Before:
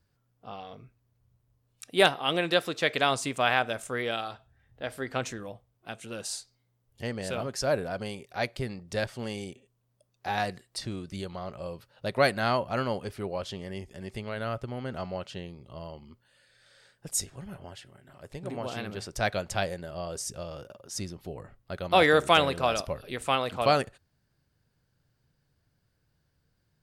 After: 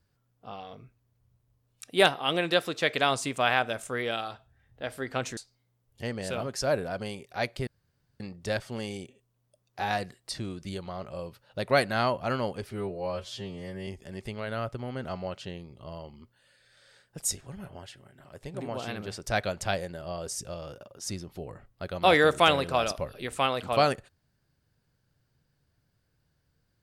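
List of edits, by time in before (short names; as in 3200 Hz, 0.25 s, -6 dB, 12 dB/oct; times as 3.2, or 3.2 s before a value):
5.37–6.37 cut
8.67 insert room tone 0.53 s
13.18–13.76 stretch 2×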